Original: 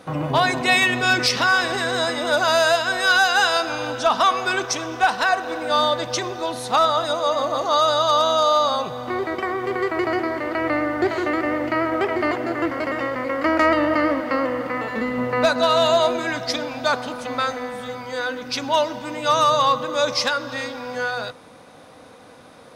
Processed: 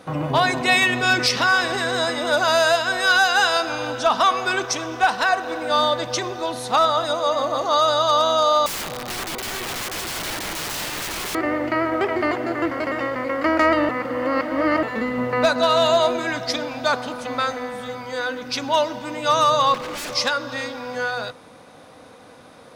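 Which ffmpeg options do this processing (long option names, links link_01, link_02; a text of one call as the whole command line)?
ffmpeg -i in.wav -filter_complex "[0:a]asettb=1/sr,asplit=3[link_01][link_02][link_03];[link_01]atrim=end=8.664[link_04];[link_02]atrim=start=8.66:end=11.35,asetpts=PTS-STARTPTS,afade=type=in:duration=0.004:curve=qsin,afade=type=out:start_time=2.686:duration=0.004:curve=qsin,aeval=exprs='(mod(15*val(0)+1,2)-1)/15':channel_layout=same[link_05];[link_03]atrim=start=11.346[link_06];[link_04][link_05]acrossfade=duration=0.004:curve1=hsin:curve2=qsin[link_07];[link_07][link_06]acrossfade=duration=0.004:curve1=qsin:curve2=hsin,asettb=1/sr,asplit=3[link_08][link_09][link_10];[link_08]atrim=end=19.744[link_11];[link_09]atrim=start=19.74:end=20.15,asetpts=PTS-STARTPTS,afade=type=in:duration=0.004:curve=qsin,afade=type=out:start_time=0.406:duration=0.004:curve=qsin,aeval=exprs='0.0531*(abs(mod(val(0)/0.0531+3,4)-2)-1)':channel_layout=same[link_12];[link_10]atrim=start=20.146[link_13];[link_11][link_12]acrossfade=duration=0.004:curve1=hsin:curve2=qsin[link_14];[link_14][link_13]acrossfade=duration=0.004:curve1=qsin:curve2=hsin,asplit=3[link_15][link_16][link_17];[link_15]atrim=end=13.892[link_18];[link_16]atrim=start=13.888:end=14.832,asetpts=PTS-STARTPTS,areverse[link_19];[link_17]atrim=start=14.828[link_20];[link_18][link_19]acrossfade=duration=0.004:curve1=hsin:curve2=hsin[link_21];[link_21][link_20]acrossfade=duration=0.004:curve1=hsin:curve2=hsin" out.wav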